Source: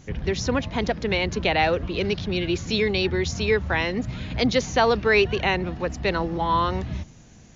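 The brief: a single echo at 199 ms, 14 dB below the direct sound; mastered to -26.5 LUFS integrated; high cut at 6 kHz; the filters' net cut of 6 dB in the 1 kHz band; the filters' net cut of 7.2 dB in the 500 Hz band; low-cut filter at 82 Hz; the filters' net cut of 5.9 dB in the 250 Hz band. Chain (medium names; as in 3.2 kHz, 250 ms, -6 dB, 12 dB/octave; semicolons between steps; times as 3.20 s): high-pass 82 Hz; low-pass 6 kHz; peaking EQ 250 Hz -6 dB; peaking EQ 500 Hz -6 dB; peaking EQ 1 kHz -5 dB; delay 199 ms -14 dB; trim +1 dB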